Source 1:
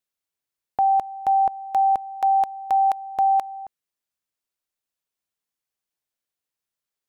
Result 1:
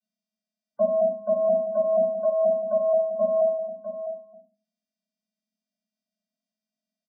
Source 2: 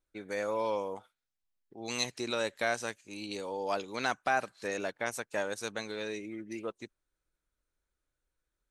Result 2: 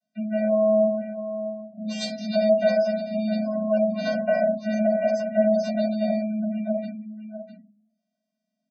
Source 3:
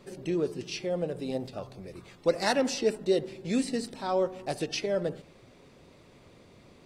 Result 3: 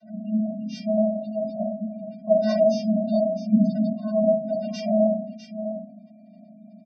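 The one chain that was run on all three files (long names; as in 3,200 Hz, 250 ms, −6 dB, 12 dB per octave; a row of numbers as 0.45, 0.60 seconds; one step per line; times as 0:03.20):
phaser with its sweep stopped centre 300 Hz, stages 6
single-tap delay 652 ms −10.5 dB
channel vocoder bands 16, square 215 Hz
high-shelf EQ 6,000 Hz −3.5 dB
rectangular room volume 210 cubic metres, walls furnished, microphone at 4.8 metres
dynamic equaliser 560 Hz, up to +6 dB, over −48 dBFS, Q 7.2
gate on every frequency bin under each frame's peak −30 dB strong
loudness normalisation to −24 LKFS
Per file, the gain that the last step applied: −2.5, +9.0, +3.0 decibels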